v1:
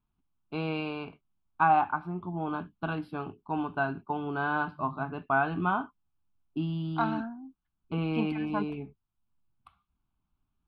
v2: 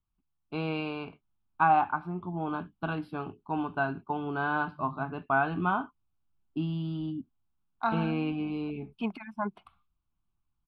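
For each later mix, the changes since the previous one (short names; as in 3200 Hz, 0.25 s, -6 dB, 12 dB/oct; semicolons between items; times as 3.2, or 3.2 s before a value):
second voice: entry +0.85 s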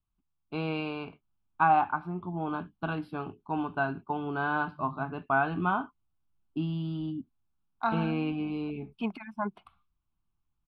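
none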